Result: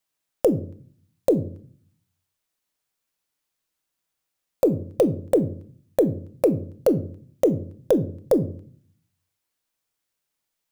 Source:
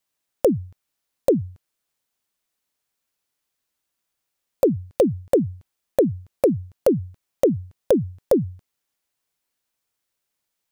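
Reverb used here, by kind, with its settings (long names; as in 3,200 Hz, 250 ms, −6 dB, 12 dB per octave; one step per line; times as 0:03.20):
rectangular room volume 520 cubic metres, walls furnished, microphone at 0.58 metres
level −1.5 dB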